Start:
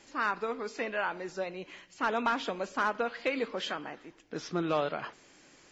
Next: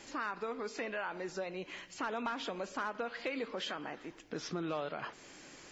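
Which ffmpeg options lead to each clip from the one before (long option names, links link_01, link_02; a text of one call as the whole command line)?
ffmpeg -i in.wav -filter_complex "[0:a]asplit=2[link_01][link_02];[link_02]alimiter=level_in=5dB:limit=-24dB:level=0:latency=1:release=56,volume=-5dB,volume=1.5dB[link_03];[link_01][link_03]amix=inputs=2:normalize=0,acompressor=threshold=-39dB:ratio=2,volume=-2dB" out.wav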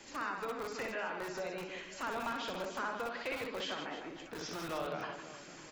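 ffmpeg -i in.wav -filter_complex "[0:a]aecho=1:1:60|156|309.6|555.4|948.6:0.631|0.398|0.251|0.158|0.1,acrossover=split=180|370|3800[link_01][link_02][link_03][link_04];[link_02]aeval=exprs='(mod(119*val(0)+1,2)-1)/119':channel_layout=same[link_05];[link_01][link_05][link_03][link_04]amix=inputs=4:normalize=0,volume=-1.5dB" out.wav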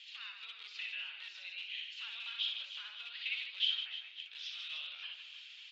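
ffmpeg -i in.wav -af "flanger=delay=2.1:depth=4.8:regen=66:speed=1.6:shape=sinusoidal,asuperpass=centerf=3200:order=4:qfactor=2.7,volume=15dB" out.wav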